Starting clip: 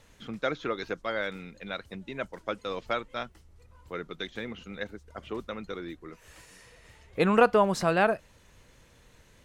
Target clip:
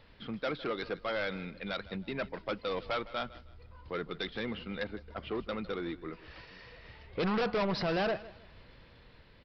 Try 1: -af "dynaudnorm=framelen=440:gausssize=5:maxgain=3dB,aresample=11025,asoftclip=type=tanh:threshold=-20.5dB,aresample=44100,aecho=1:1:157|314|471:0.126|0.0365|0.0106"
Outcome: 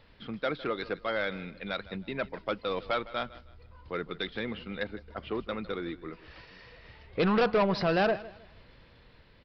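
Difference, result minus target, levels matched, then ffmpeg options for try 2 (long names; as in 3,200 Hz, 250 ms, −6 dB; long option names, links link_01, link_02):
soft clipping: distortion −5 dB
-af "dynaudnorm=framelen=440:gausssize=5:maxgain=3dB,aresample=11025,asoftclip=type=tanh:threshold=-28dB,aresample=44100,aecho=1:1:157|314|471:0.126|0.0365|0.0106"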